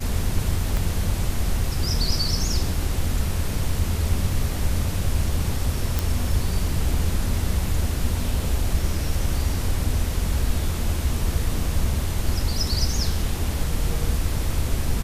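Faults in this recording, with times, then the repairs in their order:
0:00.77: click
0:05.99: click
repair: click removal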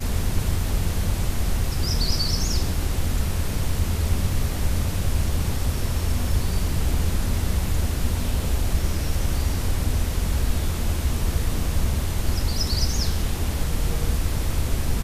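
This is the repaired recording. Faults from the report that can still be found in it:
0:00.77: click

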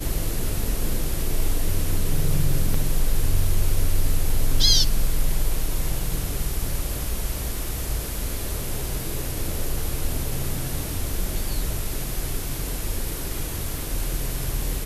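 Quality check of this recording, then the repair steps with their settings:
0:02.74: drop-out 3.2 ms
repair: repair the gap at 0:02.74, 3.2 ms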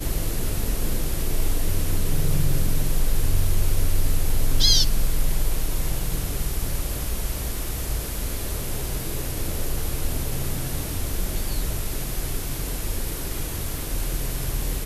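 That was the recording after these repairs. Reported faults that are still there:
none of them is left

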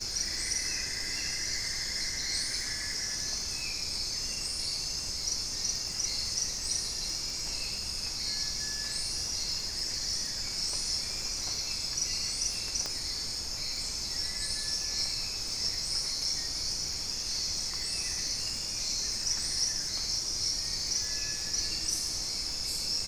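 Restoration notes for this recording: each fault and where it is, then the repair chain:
surface crackle 51 per second −37 dBFS
0:12.86: click −19 dBFS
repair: click removal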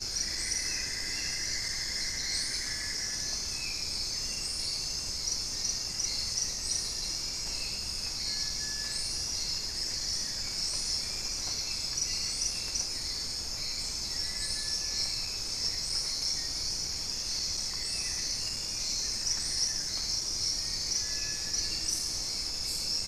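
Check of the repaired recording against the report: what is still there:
none of them is left

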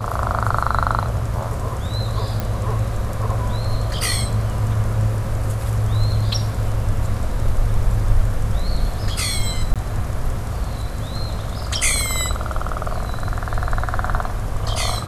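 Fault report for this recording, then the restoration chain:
0:02.40: click
0:09.74–0:09.76: drop-out 17 ms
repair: click removal
repair the gap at 0:09.74, 17 ms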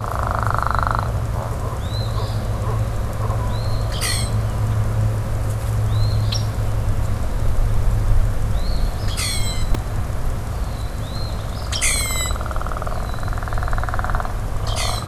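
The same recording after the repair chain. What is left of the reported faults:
0:02.40: click

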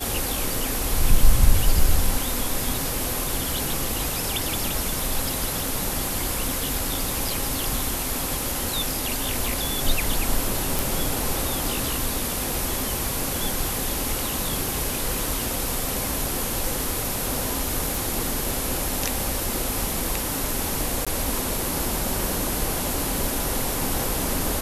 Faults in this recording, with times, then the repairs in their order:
0:10.79: click
0:17.95: click
0:21.05–0:21.07: drop-out 16 ms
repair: click removal
repair the gap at 0:21.05, 16 ms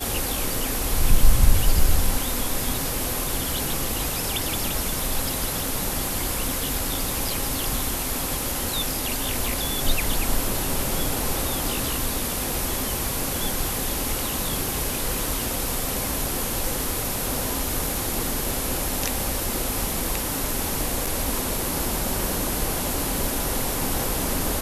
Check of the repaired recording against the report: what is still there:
none of them is left

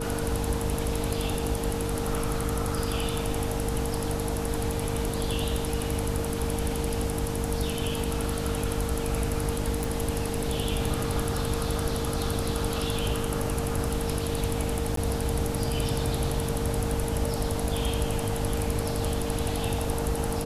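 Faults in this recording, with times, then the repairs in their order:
mains hum 50 Hz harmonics 6 −33 dBFS
whistle 460 Hz −33 dBFS
0:09.84: click
0:14.96–0:14.97: drop-out 13 ms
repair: click removal
notch filter 460 Hz, Q 30
hum removal 50 Hz, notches 6
repair the gap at 0:14.96, 13 ms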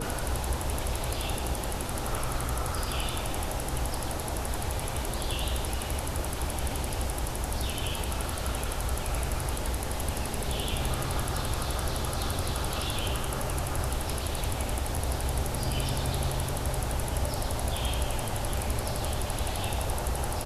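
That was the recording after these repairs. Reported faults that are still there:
none of them is left

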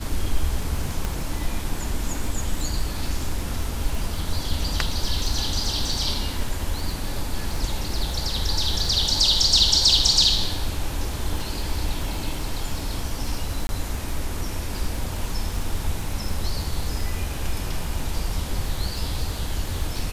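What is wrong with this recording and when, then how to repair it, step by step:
surface crackle 21 per second −27 dBFS
0:01.05: click −13 dBFS
0:13.67–0:13.69: drop-out 21 ms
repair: click removal
repair the gap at 0:13.67, 21 ms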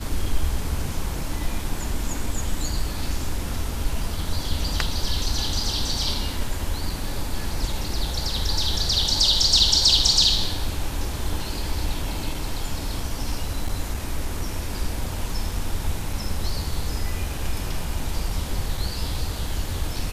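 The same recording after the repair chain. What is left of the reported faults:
0:01.05: click

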